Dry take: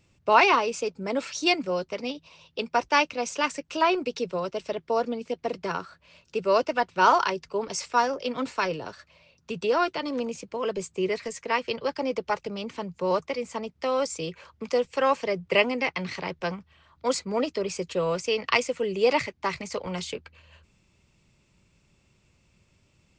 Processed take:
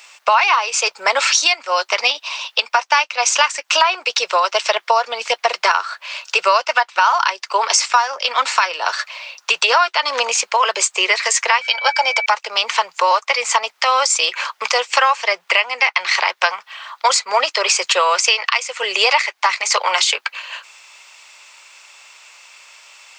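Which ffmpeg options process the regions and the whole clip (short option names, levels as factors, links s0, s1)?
-filter_complex "[0:a]asettb=1/sr,asplit=3[s0][s1][s2];[s0]atrim=end=11.614[s3];[s1]atrim=start=11.61:end=12.26,asetpts=PTS-STARTPTS,afade=t=in:d=0.004:c=qsin,afade=t=out:st=0.646:d=0.004:c=qsin,lowshelf=f=230:g=-7.5,aecho=1:1:1.3:0.79,atrim=end_sample=28665,aeval=exprs='val(0)+0.00794*sin(2*PI*2300*n/s)':c=same[s4];[s2]atrim=start=12.256[s5];[s3][s4]acrossfade=d=0.004:c1=hsin:c2=qsin[s6];[s6][s5]acrossfade=d=0.004:c1=qsin:c2=hsin,highpass=f=830:w=0.5412,highpass=f=830:w=1.3066,acompressor=threshold=0.0112:ratio=8,alimiter=level_in=25.1:limit=0.891:release=50:level=0:latency=1,volume=0.891"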